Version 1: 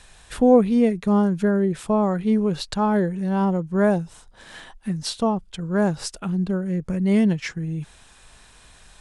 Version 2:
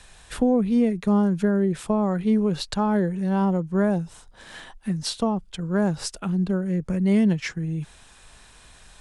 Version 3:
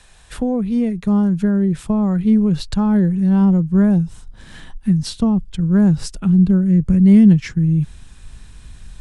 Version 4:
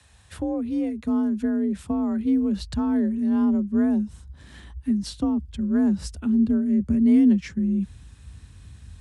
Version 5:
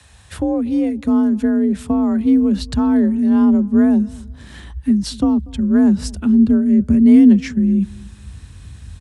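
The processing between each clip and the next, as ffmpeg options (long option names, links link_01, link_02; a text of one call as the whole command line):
ffmpeg -i in.wav -filter_complex "[0:a]acrossover=split=230[link_01][link_02];[link_02]acompressor=threshold=-21dB:ratio=6[link_03];[link_01][link_03]amix=inputs=2:normalize=0" out.wav
ffmpeg -i in.wav -af "asubboost=boost=6.5:cutoff=230" out.wav
ffmpeg -i in.wav -af "afreqshift=45,volume=-7.5dB" out.wav
ffmpeg -i in.wav -filter_complex "[0:a]asplit=2[link_01][link_02];[link_02]adelay=239,lowpass=frequency=1200:poles=1,volume=-23dB,asplit=2[link_03][link_04];[link_04]adelay=239,lowpass=frequency=1200:poles=1,volume=0.29[link_05];[link_01][link_03][link_05]amix=inputs=3:normalize=0,volume=8dB" out.wav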